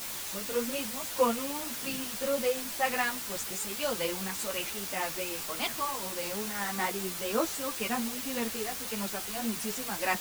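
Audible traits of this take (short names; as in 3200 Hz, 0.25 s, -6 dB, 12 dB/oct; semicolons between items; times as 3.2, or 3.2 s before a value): tremolo triangle 1.8 Hz, depth 70%; a quantiser's noise floor 6-bit, dither triangular; a shimmering, thickened sound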